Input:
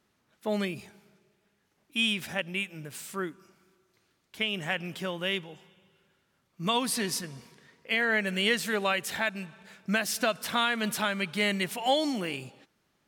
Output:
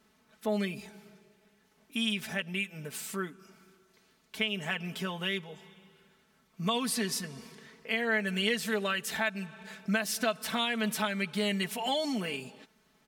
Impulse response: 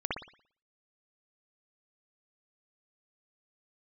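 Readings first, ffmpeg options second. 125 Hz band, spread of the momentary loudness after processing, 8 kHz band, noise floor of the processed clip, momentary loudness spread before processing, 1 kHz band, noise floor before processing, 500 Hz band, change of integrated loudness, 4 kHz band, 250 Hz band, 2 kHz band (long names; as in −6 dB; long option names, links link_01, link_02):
−0.5 dB, 14 LU, −1.5 dB, −68 dBFS, 12 LU, −4.0 dB, −73 dBFS, −2.5 dB, −2.5 dB, −2.5 dB, −0.5 dB, −3.0 dB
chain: -af "aecho=1:1:4.6:0.75,acompressor=threshold=-46dB:ratio=1.5,volume=3.5dB"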